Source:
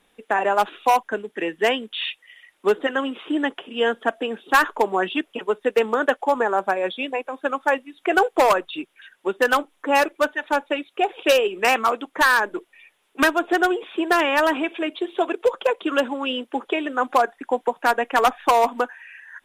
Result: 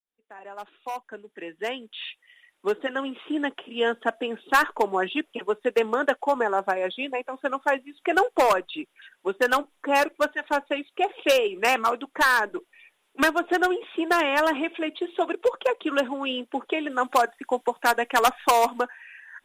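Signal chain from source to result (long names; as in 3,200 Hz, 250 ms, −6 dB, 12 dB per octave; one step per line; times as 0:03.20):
fade in at the beginning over 3.85 s
0:16.90–0:18.78: high-shelf EQ 3,400 Hz +8.5 dB
level −3 dB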